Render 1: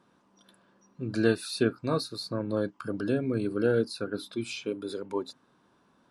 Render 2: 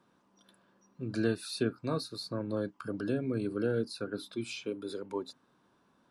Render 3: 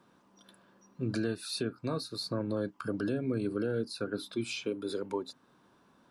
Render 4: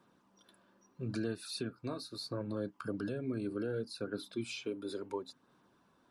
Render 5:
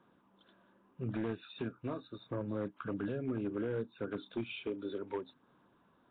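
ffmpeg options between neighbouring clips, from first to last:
-filter_complex "[0:a]acrossover=split=290[a][b];[b]acompressor=threshold=-29dB:ratio=2[c];[a][c]amix=inputs=2:normalize=0,volume=-3.5dB"
-af "alimiter=level_in=3dB:limit=-24dB:level=0:latency=1:release=334,volume=-3dB,volume=4.5dB"
-af "flanger=delay=0:depth=3.4:regen=-51:speed=0.72:shape=sinusoidal,volume=-1dB"
-af "aeval=exprs='0.0335*(abs(mod(val(0)/0.0335+3,4)-2)-1)':c=same,volume=1dB" -ar 8000 -c:a nellymoser

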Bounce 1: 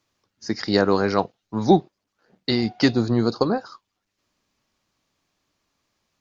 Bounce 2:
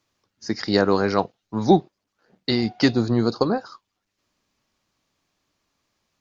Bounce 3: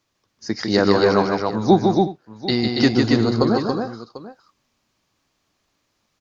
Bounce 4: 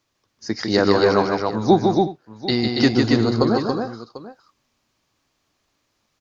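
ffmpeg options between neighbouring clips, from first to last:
-af anull
-af "aecho=1:1:152|241|279|357|744:0.596|0.106|0.668|0.133|0.15,volume=1dB"
-af "equalizer=f=190:t=o:w=0.25:g=-3.5"

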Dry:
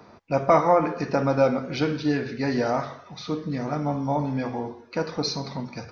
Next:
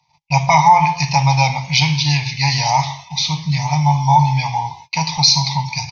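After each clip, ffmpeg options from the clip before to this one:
-af "agate=range=-27dB:threshold=-46dB:ratio=16:detection=peak,firequalizer=gain_entry='entry(100,0);entry(150,9);entry(220,-22);entry(450,-30);entry(880,13);entry(1400,-26);entry(2100,10);entry(6300,15);entry(9400,3)':delay=0.05:min_phase=1,alimiter=level_in=9.5dB:limit=-1dB:release=50:level=0:latency=1,volume=-1dB"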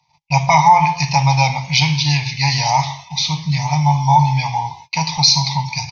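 -af anull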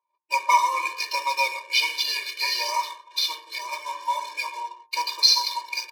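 -af "adynamicsmooth=sensitivity=6.5:basefreq=860,bandreject=f=115.2:t=h:w=4,bandreject=f=230.4:t=h:w=4,bandreject=f=345.6:t=h:w=4,bandreject=f=460.8:t=h:w=4,bandreject=f=576:t=h:w=4,bandreject=f=691.2:t=h:w=4,bandreject=f=806.4:t=h:w=4,bandreject=f=921.6:t=h:w=4,bandreject=f=1.0368k:t=h:w=4,bandreject=f=1.152k:t=h:w=4,bandreject=f=1.2672k:t=h:w=4,bandreject=f=1.3824k:t=h:w=4,bandreject=f=1.4976k:t=h:w=4,bandreject=f=1.6128k:t=h:w=4,bandreject=f=1.728k:t=h:w=4,afftfilt=real='re*eq(mod(floor(b*sr/1024/310),2),1)':imag='im*eq(mod(floor(b*sr/1024/310),2),1)':win_size=1024:overlap=0.75,volume=-2.5dB"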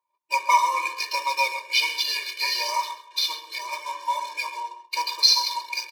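-af "aecho=1:1:133:0.158"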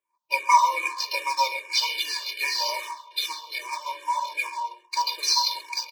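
-filter_complex "[0:a]asplit=2[a][b];[b]afreqshift=-2.5[c];[a][c]amix=inputs=2:normalize=1,volume=2.5dB"

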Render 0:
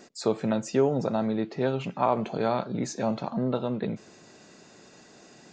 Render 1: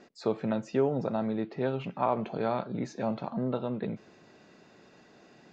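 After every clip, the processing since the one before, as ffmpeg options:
-af "lowpass=3.6k,volume=-3.5dB"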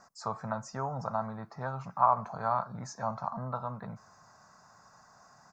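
-af "firequalizer=gain_entry='entry(100,0);entry(340,-23);entry(660,-2);entry(1100,9);entry(2100,-11);entry(3000,-24);entry(5300,6)':delay=0.05:min_phase=1,volume=1dB"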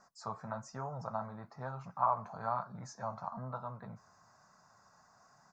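-af "flanger=delay=4.6:depth=8.1:regen=-50:speed=1.1:shape=triangular,volume=-2dB"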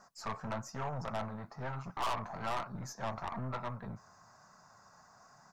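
-af "aeval=exprs='(tanh(89.1*val(0)+0.65)-tanh(0.65))/89.1':c=same,volume=7.5dB"

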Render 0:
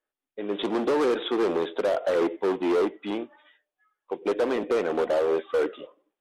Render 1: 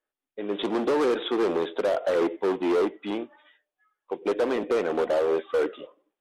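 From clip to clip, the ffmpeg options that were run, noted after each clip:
-af anull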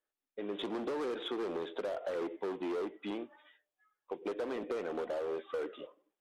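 -filter_complex "[0:a]asplit=2[a][b];[b]asoftclip=type=tanh:threshold=-31.5dB,volume=-8dB[c];[a][c]amix=inputs=2:normalize=0,acompressor=threshold=-28dB:ratio=3,volume=-7.5dB"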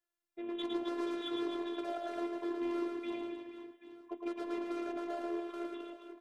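-af "aecho=1:1:110|264|479.6|781.4|1204:0.631|0.398|0.251|0.158|0.1,afftfilt=real='hypot(re,im)*cos(PI*b)':imag='0':win_size=512:overlap=0.75,volume=1dB"

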